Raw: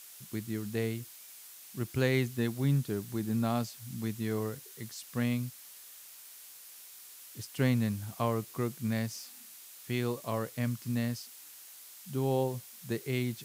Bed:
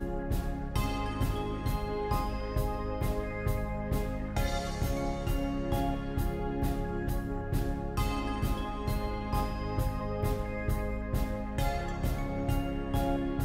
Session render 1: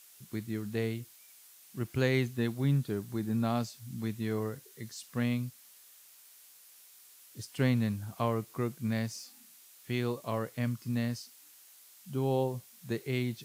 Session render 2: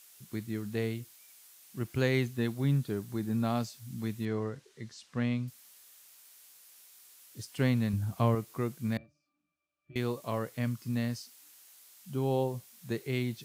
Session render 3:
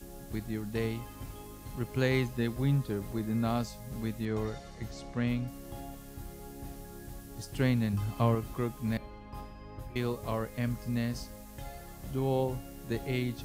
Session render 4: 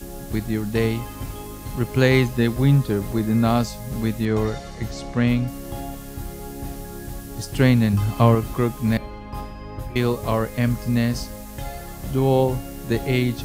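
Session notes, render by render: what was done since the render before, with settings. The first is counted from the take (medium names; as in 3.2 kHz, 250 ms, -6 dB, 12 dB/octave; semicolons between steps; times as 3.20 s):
noise print and reduce 6 dB
4.25–5.48 s: distance through air 91 m; 7.93–8.35 s: bass shelf 230 Hz +9.5 dB; 8.97–9.96 s: pitch-class resonator D, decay 0.2 s
add bed -13 dB
trim +11.5 dB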